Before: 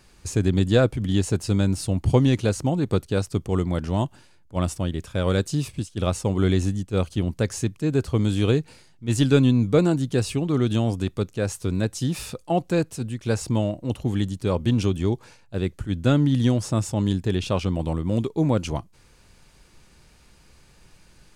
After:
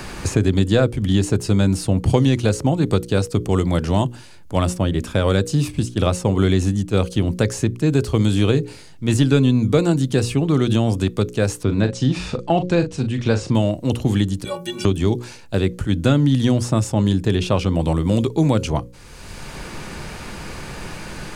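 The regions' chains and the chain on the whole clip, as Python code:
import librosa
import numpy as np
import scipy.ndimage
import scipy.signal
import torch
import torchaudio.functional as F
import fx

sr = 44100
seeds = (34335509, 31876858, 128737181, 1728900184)

y = fx.chain(x, sr, fx.gaussian_blur(sigma=1.5),
    fx.doubler(ms=39.0, db=-9.5), at=(11.63, 13.55))
y = fx.chain(y, sr, fx.riaa(side='recording'),
    fx.stiff_resonator(f0_hz=170.0, decay_s=0.36, stiffness=0.03),
    fx.band_squash(depth_pct=40), at=(14.44, 14.85))
y = fx.hum_notches(y, sr, base_hz=60, count=9)
y = fx.band_squash(y, sr, depth_pct=70)
y = F.gain(torch.from_numpy(y), 5.0).numpy()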